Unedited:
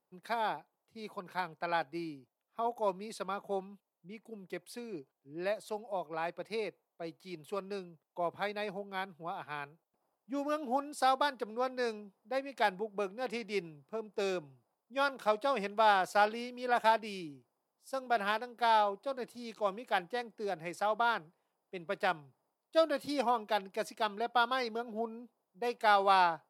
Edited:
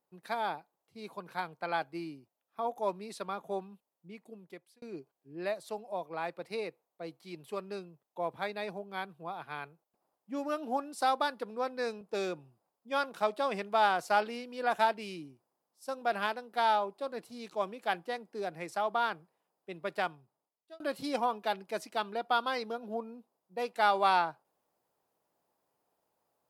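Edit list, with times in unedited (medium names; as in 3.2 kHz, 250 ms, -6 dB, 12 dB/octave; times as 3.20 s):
4.20–4.82 s: fade out
12.01–14.06 s: delete
21.98–22.85 s: fade out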